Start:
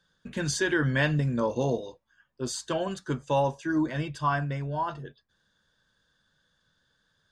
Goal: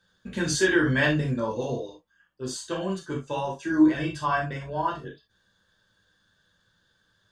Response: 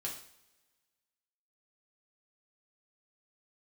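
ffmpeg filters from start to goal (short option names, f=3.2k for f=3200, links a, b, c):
-filter_complex "[0:a]asplit=3[a][b][c];[a]afade=t=out:st=1.33:d=0.02[d];[b]flanger=delay=4.9:depth=2.7:regen=58:speed=1.4:shape=triangular,afade=t=in:st=1.33:d=0.02,afade=t=out:st=3.59:d=0.02[e];[c]afade=t=in:st=3.59:d=0.02[f];[d][e][f]amix=inputs=3:normalize=0[g];[1:a]atrim=start_sample=2205,atrim=end_sample=3528[h];[g][h]afir=irnorm=-1:irlink=0,volume=4dB"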